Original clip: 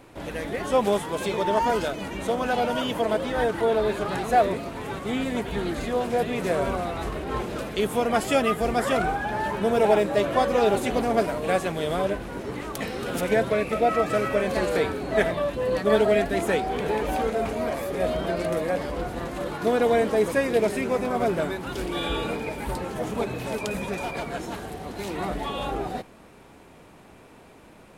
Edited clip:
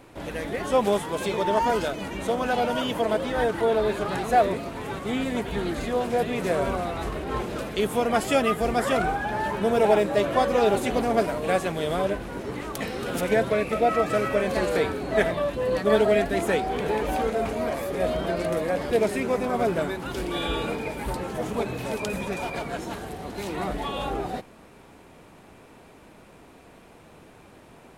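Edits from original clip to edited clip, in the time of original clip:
18.91–20.52 s: delete

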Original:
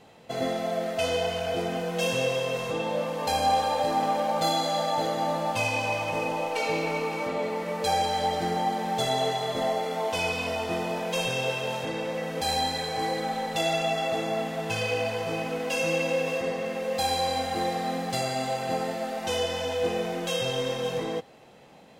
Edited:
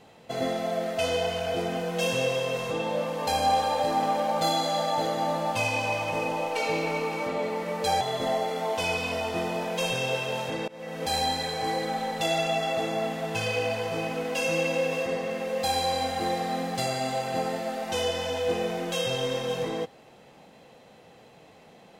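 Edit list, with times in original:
8.01–9.36 s: delete
12.03–12.42 s: fade in, from -23.5 dB

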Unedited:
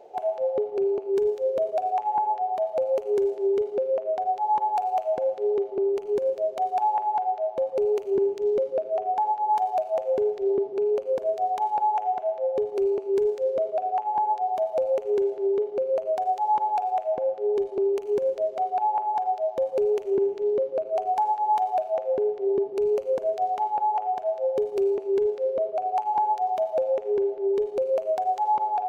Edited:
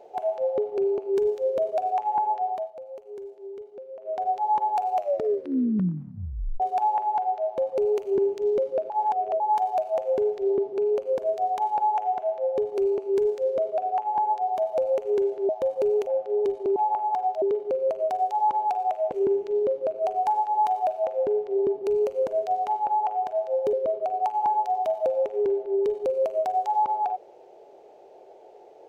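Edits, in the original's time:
2.48–4.23 s: dip -15.5 dB, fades 0.25 s
4.95 s: tape stop 1.65 s
8.90–9.40 s: reverse
15.49–17.19 s: swap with 19.45–20.03 s
17.88–18.79 s: delete
24.64–25.45 s: delete

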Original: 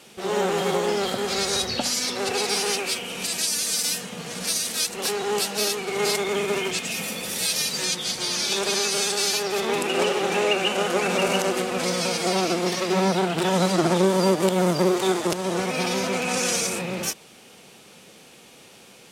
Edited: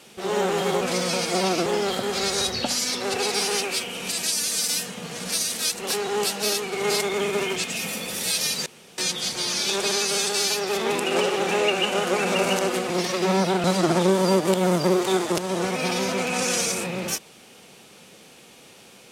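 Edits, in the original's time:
7.81 s: insert room tone 0.32 s
11.73–12.58 s: move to 0.81 s
13.32–13.59 s: delete

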